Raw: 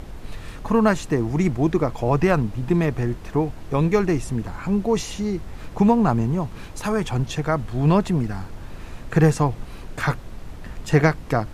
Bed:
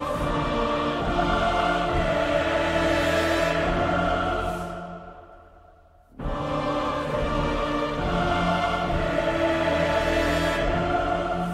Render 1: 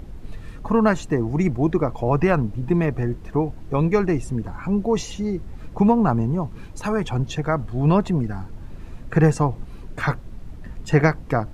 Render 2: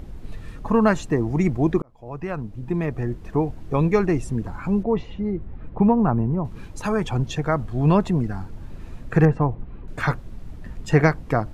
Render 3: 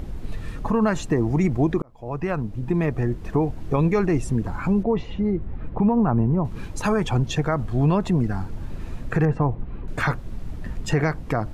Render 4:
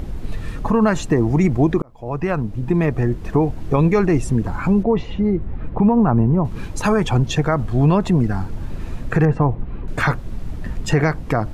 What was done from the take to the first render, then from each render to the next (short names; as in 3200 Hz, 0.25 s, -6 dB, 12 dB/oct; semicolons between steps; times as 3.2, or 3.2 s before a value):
denoiser 9 dB, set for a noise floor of -37 dBFS
1.82–3.44 fade in; 4.83–6.45 air absorption 490 m; 9.25–9.88 air absorption 500 m
in parallel at -2.5 dB: compressor, threshold -28 dBFS, peak gain reduction 16 dB; on the sum: limiter -12 dBFS, peak gain reduction 8 dB
gain +4.5 dB